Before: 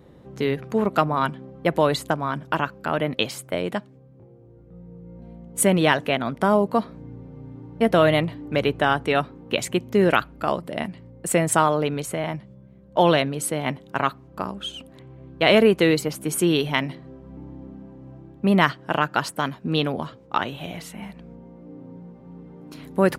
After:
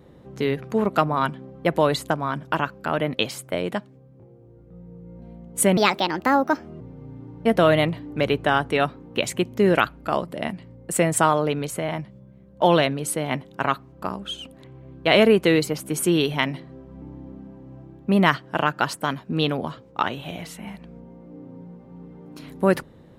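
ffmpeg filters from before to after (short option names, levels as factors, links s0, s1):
-filter_complex "[0:a]asplit=3[s0][s1][s2];[s0]atrim=end=5.774[s3];[s1]atrim=start=5.77:end=7.16,asetpts=PTS-STARTPTS,asetrate=59094,aresample=44100[s4];[s2]atrim=start=7.156[s5];[s3][s4]acrossfade=d=0.004:c1=hsin:c2=hsin[s6];[s6][s5]acrossfade=d=0.004:c1=hsin:c2=hsin"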